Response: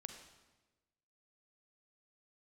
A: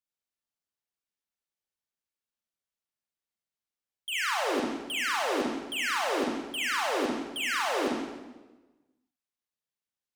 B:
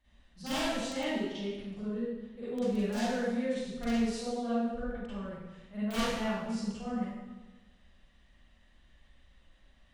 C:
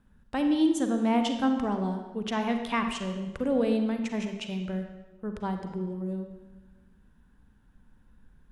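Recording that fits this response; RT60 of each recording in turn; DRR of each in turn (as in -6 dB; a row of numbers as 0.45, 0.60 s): C; 1.2, 1.2, 1.2 s; -3.5, -12.5, 5.5 dB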